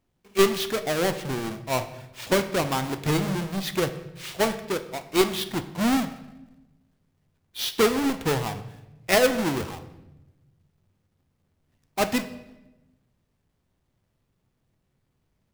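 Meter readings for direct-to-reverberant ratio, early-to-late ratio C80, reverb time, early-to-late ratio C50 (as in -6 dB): 9.0 dB, 15.0 dB, 1.0 s, 12.5 dB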